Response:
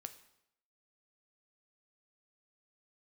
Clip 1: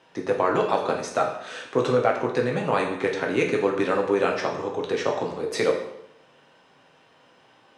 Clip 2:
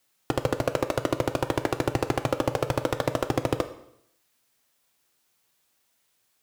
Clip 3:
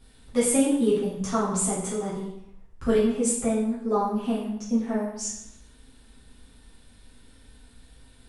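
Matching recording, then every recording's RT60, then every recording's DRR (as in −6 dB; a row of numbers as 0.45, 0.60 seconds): 2; 0.80, 0.80, 0.80 seconds; −0.5, 9.0, −9.5 decibels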